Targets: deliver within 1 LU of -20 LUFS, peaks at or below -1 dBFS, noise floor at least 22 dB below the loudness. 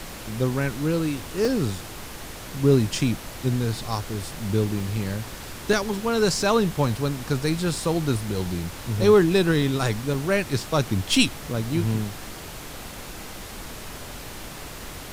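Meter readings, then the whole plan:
dropouts 8; longest dropout 2.2 ms; noise floor -38 dBFS; noise floor target -46 dBFS; loudness -24.0 LUFS; peak level -5.5 dBFS; loudness target -20.0 LUFS
-> interpolate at 1.45/4.80/5.73/6.89/8.28/9.62/10.14/11.54 s, 2.2 ms; noise print and reduce 8 dB; trim +4 dB

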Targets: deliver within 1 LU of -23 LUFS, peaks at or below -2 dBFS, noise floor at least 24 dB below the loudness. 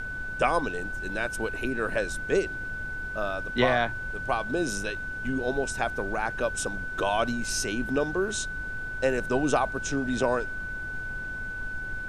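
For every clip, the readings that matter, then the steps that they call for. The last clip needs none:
steady tone 1.5 kHz; tone level -33 dBFS; noise floor -35 dBFS; noise floor target -53 dBFS; loudness -29.0 LUFS; peak level -9.0 dBFS; loudness target -23.0 LUFS
-> band-stop 1.5 kHz, Q 30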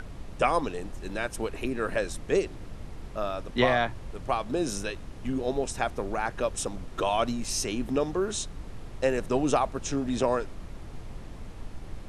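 steady tone not found; noise floor -42 dBFS; noise floor target -54 dBFS
-> noise print and reduce 12 dB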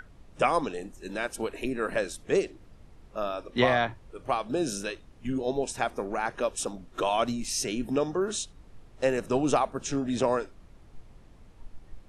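noise floor -53 dBFS; noise floor target -54 dBFS
-> noise print and reduce 6 dB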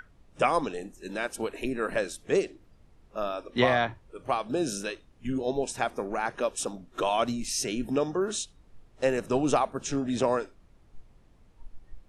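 noise floor -59 dBFS; loudness -29.5 LUFS; peak level -9.0 dBFS; loudness target -23.0 LUFS
-> trim +6.5 dB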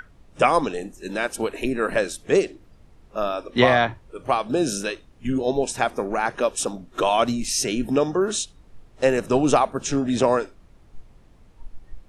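loudness -23.0 LUFS; peak level -2.5 dBFS; noise floor -53 dBFS

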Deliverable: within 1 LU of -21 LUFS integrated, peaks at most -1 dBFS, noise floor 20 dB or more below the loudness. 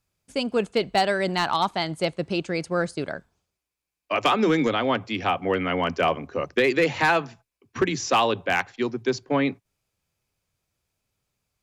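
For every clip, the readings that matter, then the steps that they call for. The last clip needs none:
clipped samples 0.3%; clipping level -13.0 dBFS; loudness -24.5 LUFS; peak level -13.0 dBFS; loudness target -21.0 LUFS
-> clip repair -13 dBFS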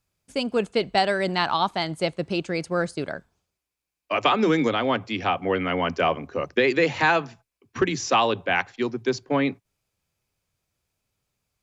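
clipped samples 0.0%; loudness -24.0 LUFS; peak level -6.5 dBFS; loudness target -21.0 LUFS
-> trim +3 dB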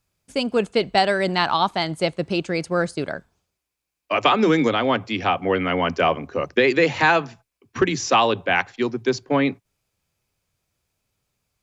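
loudness -21.0 LUFS; peak level -3.5 dBFS; noise floor -82 dBFS

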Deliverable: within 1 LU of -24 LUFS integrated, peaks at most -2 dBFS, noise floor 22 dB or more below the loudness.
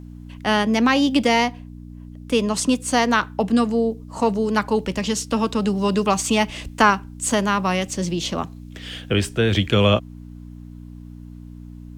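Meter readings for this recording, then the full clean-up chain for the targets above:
hum 60 Hz; highest harmonic 300 Hz; hum level -35 dBFS; loudness -20.5 LUFS; peak level -2.0 dBFS; loudness target -24.0 LUFS
-> de-hum 60 Hz, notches 5; trim -3.5 dB

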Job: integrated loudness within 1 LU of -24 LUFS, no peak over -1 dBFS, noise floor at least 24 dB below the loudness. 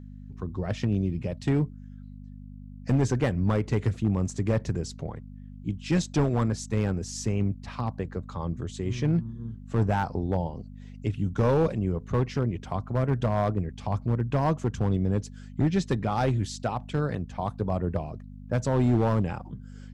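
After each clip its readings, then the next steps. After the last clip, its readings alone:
clipped samples 1.0%; clipping level -17.0 dBFS; hum 50 Hz; highest harmonic 250 Hz; hum level -43 dBFS; loudness -28.0 LUFS; peak level -17.0 dBFS; loudness target -24.0 LUFS
-> clip repair -17 dBFS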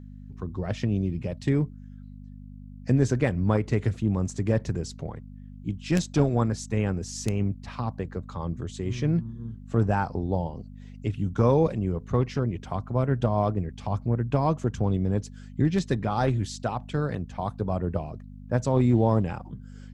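clipped samples 0.0%; hum 50 Hz; highest harmonic 250 Hz; hum level -43 dBFS
-> de-hum 50 Hz, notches 5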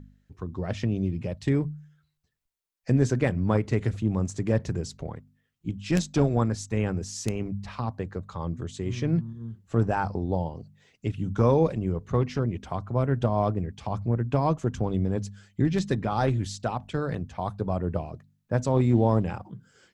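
hum not found; loudness -27.5 LUFS; peak level -8.0 dBFS; loudness target -24.0 LUFS
-> trim +3.5 dB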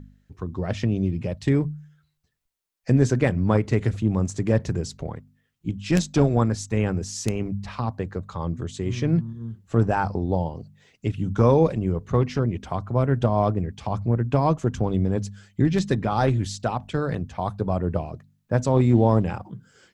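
loudness -24.0 LUFS; peak level -4.5 dBFS; noise floor -71 dBFS

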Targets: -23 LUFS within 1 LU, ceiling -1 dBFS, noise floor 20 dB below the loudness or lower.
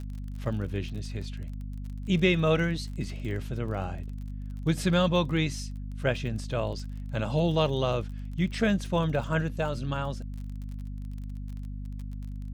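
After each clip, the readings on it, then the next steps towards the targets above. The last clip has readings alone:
tick rate 34 per s; hum 50 Hz; highest harmonic 250 Hz; hum level -34 dBFS; loudness -30.5 LUFS; peak level -11.0 dBFS; loudness target -23.0 LUFS
-> de-click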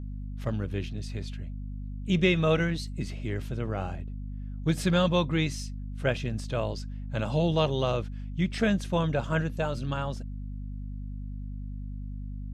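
tick rate 0.080 per s; hum 50 Hz; highest harmonic 250 Hz; hum level -34 dBFS
-> hum notches 50/100/150/200/250 Hz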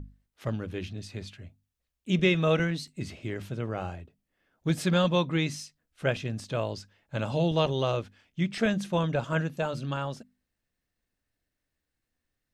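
hum not found; loudness -29.5 LUFS; peak level -11.0 dBFS; loudness target -23.0 LUFS
-> trim +6.5 dB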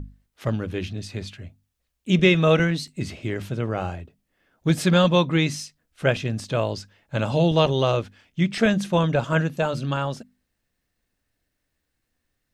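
loudness -23.0 LUFS; peak level -4.5 dBFS; noise floor -78 dBFS

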